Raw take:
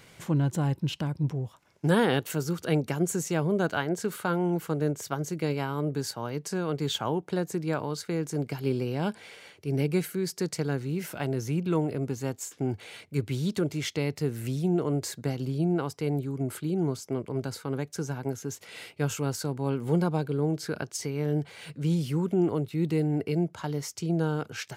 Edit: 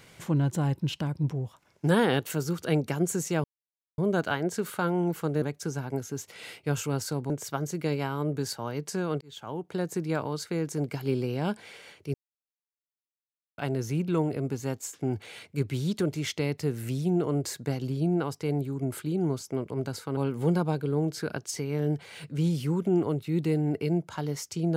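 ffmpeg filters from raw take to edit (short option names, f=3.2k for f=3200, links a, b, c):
-filter_complex "[0:a]asplit=8[a][b][c][d][e][f][g][h];[a]atrim=end=3.44,asetpts=PTS-STARTPTS,afade=t=out:st=3.436:d=0.004:c=hsin,apad=pad_dur=0.54[i];[b]atrim=start=3.44:end=4.882,asetpts=PTS-STARTPTS,afade=t=in:d=0.004:c=hsin[j];[c]atrim=start=17.748:end=19.632[k];[d]atrim=start=4.878:end=6.79,asetpts=PTS-STARTPTS,afade=t=out:st=1.908:d=0.004:c=hsin[l];[e]atrim=start=6.79:end=9.72,asetpts=PTS-STARTPTS,afade=t=in:d=0.71,afade=t=out:st=2.926:d=0.004:c=hsin[m];[f]atrim=start=9.72:end=11.16,asetpts=PTS-STARTPTS,volume=0[n];[g]atrim=start=11.16:end=17.752,asetpts=PTS-STARTPTS,afade=t=in:d=0.004:c=hsin[o];[h]atrim=start=19.628[p];[i][j]concat=n=2:v=0:a=1[q];[q][k]acrossfade=d=0.004:c1=hsin:c2=hsin[r];[l][m][n][o]concat=n=4:v=0:a=1[s];[r][s]acrossfade=d=0.004:c1=hsin:c2=hsin[t];[t][p]acrossfade=d=0.004:c1=hsin:c2=hsin"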